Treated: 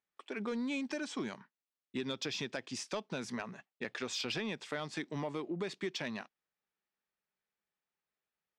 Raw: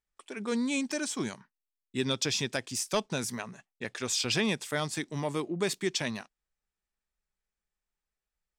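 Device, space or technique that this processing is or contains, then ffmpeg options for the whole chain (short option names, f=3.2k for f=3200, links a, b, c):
AM radio: -af "highpass=170,lowpass=3.8k,acompressor=threshold=-34dB:ratio=6,asoftclip=type=tanh:threshold=-26.5dB,volume=1dB"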